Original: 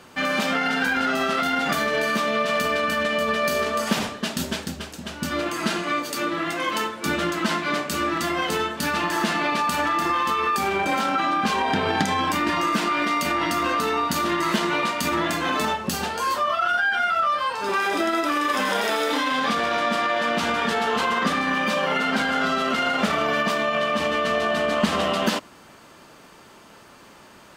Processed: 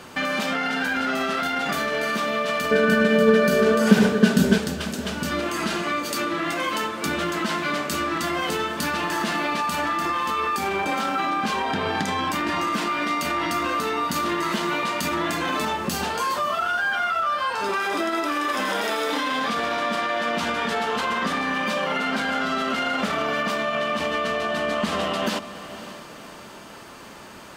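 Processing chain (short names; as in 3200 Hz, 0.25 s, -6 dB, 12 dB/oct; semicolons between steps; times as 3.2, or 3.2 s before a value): in parallel at +1 dB: limiter -19 dBFS, peak gain reduction 9 dB; on the sum: compressor 2:1, threshold -25 dBFS, peak gain reduction 7.5 dB; 2.71–4.58 small resonant body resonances 200/420/1500 Hz, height 17 dB, ringing for 55 ms; diffused feedback echo 0.556 s, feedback 41%, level -14 dB; gain -1 dB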